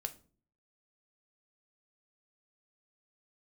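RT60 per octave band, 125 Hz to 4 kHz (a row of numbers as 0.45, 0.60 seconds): 0.70, 0.60, 0.50, 0.35, 0.30, 0.30 seconds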